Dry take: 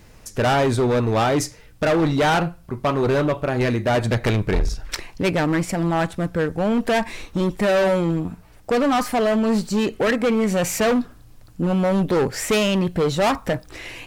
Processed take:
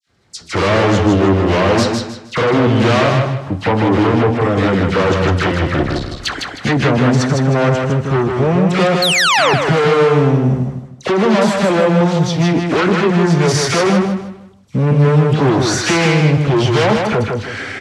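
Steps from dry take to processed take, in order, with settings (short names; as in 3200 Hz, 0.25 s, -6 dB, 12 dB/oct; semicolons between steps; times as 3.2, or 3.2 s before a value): expander -35 dBFS; bell 140 Hz +3.5 dB; notch 1200 Hz, Q 21; dispersion lows, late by 56 ms, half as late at 2100 Hz; varispeed -21%; painted sound fall, 9.02–9.54, 370–4500 Hz -13 dBFS; in parallel at -6 dB: sine folder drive 12 dB, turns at -5.5 dBFS; on the sum: BPF 100–6800 Hz; on a send: feedback echo 0.156 s, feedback 31%, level -4 dB; on the sum: gain -2.5 dB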